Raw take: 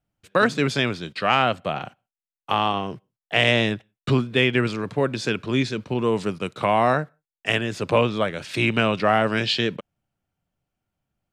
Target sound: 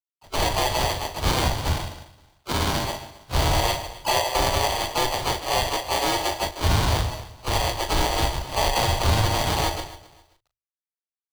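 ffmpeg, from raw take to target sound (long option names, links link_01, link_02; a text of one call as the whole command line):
ffmpeg -i in.wav -filter_complex "[0:a]afftfilt=real='real(if(lt(b,1008),b+24*(1-2*mod(floor(b/24),2)),b),0)':imag='imag(if(lt(b,1008),b+24*(1-2*mod(floor(b/24),2)),b),0)':win_size=2048:overlap=0.75,asplit=2[link_01][link_02];[link_02]adelay=146,lowpass=frequency=1500:poles=1,volume=-11.5dB,asplit=2[link_03][link_04];[link_04]adelay=146,lowpass=frequency=1500:poles=1,volume=0.15[link_05];[link_03][link_05]amix=inputs=2:normalize=0[link_06];[link_01][link_06]amix=inputs=2:normalize=0,acrusher=samples=33:mix=1:aa=0.000001,asplit=4[link_07][link_08][link_09][link_10];[link_08]asetrate=37084,aresample=44100,atempo=1.18921,volume=-12dB[link_11];[link_09]asetrate=58866,aresample=44100,atempo=0.749154,volume=-4dB[link_12];[link_10]asetrate=66075,aresample=44100,atempo=0.66742,volume=-13dB[link_13];[link_07][link_11][link_12][link_13]amix=inputs=4:normalize=0,asplit=2[link_14][link_15];[link_15]aecho=0:1:264|528:0.1|0.025[link_16];[link_14][link_16]amix=inputs=2:normalize=0,acrusher=bits=10:mix=0:aa=0.000001,bandreject=frequency=50:width_type=h:width=6,bandreject=frequency=100:width_type=h:width=6,bandreject=frequency=150:width_type=h:width=6,alimiter=limit=-12.5dB:level=0:latency=1:release=61,equalizer=frequency=125:width_type=o:width=1:gain=9,equalizer=frequency=250:width_type=o:width=1:gain=-10,equalizer=frequency=500:width_type=o:width=1:gain=-5,equalizer=frequency=1000:width_type=o:width=1:gain=4,equalizer=frequency=2000:width_type=o:width=1:gain=-3,equalizer=frequency=4000:width_type=o:width=1:gain=7,afreqshift=-37,asplit=2[link_17][link_18];[link_18]adelay=38,volume=-10dB[link_19];[link_17][link_19]amix=inputs=2:normalize=0" out.wav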